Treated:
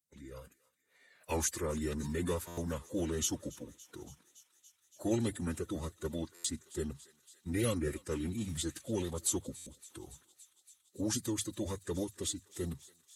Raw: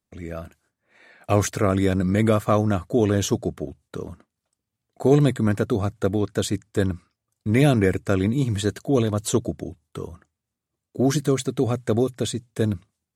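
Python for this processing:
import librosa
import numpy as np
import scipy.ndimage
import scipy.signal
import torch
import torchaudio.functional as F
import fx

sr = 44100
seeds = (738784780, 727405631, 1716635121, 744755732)

p1 = fx.spec_quant(x, sr, step_db=15)
p2 = scipy.signal.sosfilt(scipy.signal.butter(2, 48.0, 'highpass', fs=sr, output='sos'), p1)
p3 = scipy.signal.lfilter([1.0, -0.8], [1.0], p2)
p4 = p3 + fx.echo_thinned(p3, sr, ms=283, feedback_pct=82, hz=1100.0, wet_db=-20.0, dry=0)
p5 = fx.pitch_keep_formants(p4, sr, semitones=-4.0)
p6 = fx.buffer_glitch(p5, sr, at_s=(2.47, 6.34, 9.56), block=512, repeats=8)
y = F.gain(torch.from_numpy(p6), -1.0).numpy()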